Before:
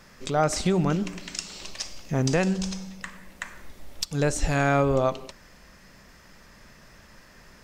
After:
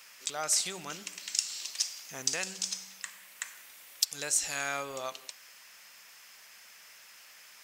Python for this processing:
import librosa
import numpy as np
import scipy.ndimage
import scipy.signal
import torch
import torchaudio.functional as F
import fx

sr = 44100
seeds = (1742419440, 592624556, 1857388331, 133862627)

y = fx.dmg_noise_band(x, sr, seeds[0], low_hz=420.0, high_hz=2700.0, level_db=-53.0)
y = np.diff(y, prepend=0.0)
y = F.gain(torch.from_numpy(y), 5.5).numpy()